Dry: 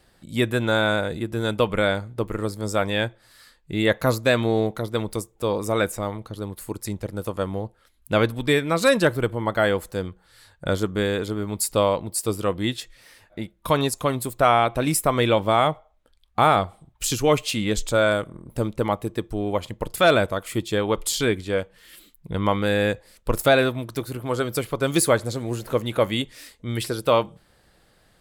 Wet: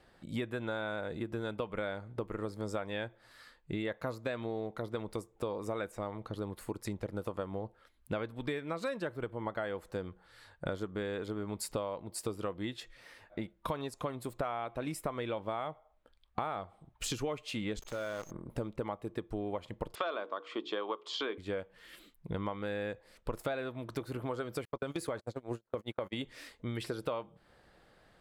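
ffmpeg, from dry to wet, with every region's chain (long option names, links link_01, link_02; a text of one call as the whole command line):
ffmpeg -i in.wav -filter_complex "[0:a]asettb=1/sr,asplit=3[link_01][link_02][link_03];[link_01]atrim=end=17.794[link_04];[link_02]atrim=start=17.79:end=18.31,asetpts=PTS-STARTPTS,afade=type=in:duration=0.004:curve=qsin,afade=type=out:start_time=0.516:duration=0.004:curve=qsin,aeval=exprs='val(0)+0.0126*sin(2*PI*6400*n/s)':channel_layout=same,acrusher=bits=5:dc=4:mix=0:aa=0.000001,acompressor=threshold=-33dB:ratio=4:attack=3.2:release=140:knee=1:detection=peak[link_05];[link_03]atrim=start=18.306[link_06];[link_04][link_05]acrossfade=duration=0.004:curve1=hsin:curve2=qsin[link_07];[link_07][link_06]acrossfade=duration=0.004:curve1=qsin:curve2=hsin,asettb=1/sr,asplit=3[link_08][link_09][link_10];[link_08]atrim=end=19.954[link_11];[link_09]atrim=start=19.95:end=21.38,asetpts=PTS-STARTPTS,afade=type=in:duration=0.004:curve=qsin,afade=type=out:start_time=1.426:duration=0.004:curve=qsin,highpass=frequency=280:width=0.5412,highpass=frequency=280:width=1.3066,equalizer=frequency=1100:width_type=q:width=4:gain=10,equalizer=frequency=2000:width_type=q:width=4:gain=-3,equalizer=frequency=3200:width_type=q:width=4:gain=5,lowpass=frequency=5400:width=0.5412,lowpass=frequency=5400:width=1.3066,bandreject=frequency=60:width_type=h:width=6,bandreject=frequency=120:width_type=h:width=6,bandreject=frequency=180:width_type=h:width=6,bandreject=frequency=240:width_type=h:width=6,bandreject=frequency=300:width_type=h:width=6,bandreject=frequency=360:width_type=h:width=6,bandreject=frequency=420:width_type=h:width=6,bandreject=frequency=480:width_type=h:width=6[link_12];[link_10]atrim=start=21.376[link_13];[link_11][link_12]acrossfade=duration=0.004:curve1=hsin:curve2=qsin[link_14];[link_14][link_13]acrossfade=duration=0.004:curve1=qsin:curve2=hsin,asettb=1/sr,asplit=3[link_15][link_16][link_17];[link_15]atrim=end=24.654[link_18];[link_16]atrim=start=24.65:end=26.21,asetpts=PTS-STARTPTS,afade=type=in:duration=0.004:curve=qsin,afade=type=out:start_time=1.556:duration=0.004:curve=qsin,agate=range=-43dB:threshold=-27dB:ratio=16:release=100:detection=peak,acompressor=threshold=-20dB:ratio=3:attack=3.2:release=140:knee=1:detection=peak[link_19];[link_17]atrim=start=26.206[link_20];[link_18][link_19]acrossfade=duration=0.004:curve1=hsin:curve2=qsin[link_21];[link_21][link_20]acrossfade=duration=0.004:curve1=qsin:curve2=hsin,lowpass=frequency=1900:poles=1,lowshelf=frequency=240:gain=-7,acompressor=threshold=-33dB:ratio=10" out.wav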